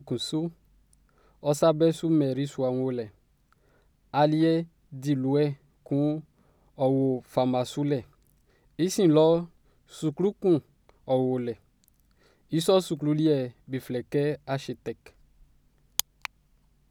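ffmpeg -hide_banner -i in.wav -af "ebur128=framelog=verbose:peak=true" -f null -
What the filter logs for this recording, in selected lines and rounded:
Integrated loudness:
  I:         -26.7 LUFS
  Threshold: -38.2 LUFS
Loudness range:
  LRA:         3.9 LU
  Threshold: -47.9 LUFS
  LRA low:   -30.1 LUFS
  LRA high:  -26.2 LUFS
True peak:
  Peak:       -4.1 dBFS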